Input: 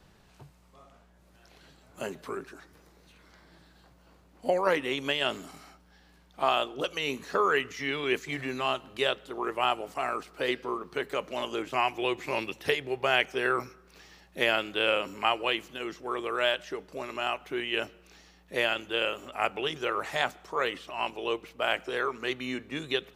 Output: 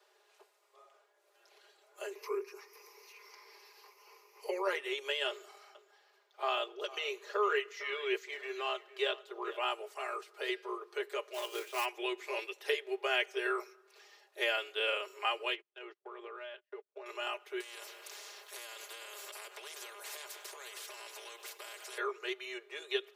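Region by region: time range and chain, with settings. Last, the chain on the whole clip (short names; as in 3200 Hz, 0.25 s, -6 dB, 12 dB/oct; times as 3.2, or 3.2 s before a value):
2.15–4.62 ripple EQ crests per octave 0.82, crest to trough 15 dB + mismatched tape noise reduction encoder only
5.29–9.66 bell 10000 Hz -8.5 dB 0.78 oct + echo 0.456 s -17.5 dB
11.33–11.84 whine 2400 Hz -52 dBFS + companded quantiser 4-bit
15.54–17.06 gate -39 dBFS, range -38 dB + LPF 3000 Hz + compressor 5:1, threshold -36 dBFS
17.6–21.98 compressor 8:1, threshold -36 dBFS + comb 1.9 ms, depth 47% + spectral compressor 4:1
whole clip: steep high-pass 360 Hz 72 dB/oct; comb 4.9 ms, depth 81%; dynamic EQ 830 Hz, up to -4 dB, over -41 dBFS, Q 1.2; gain -7.5 dB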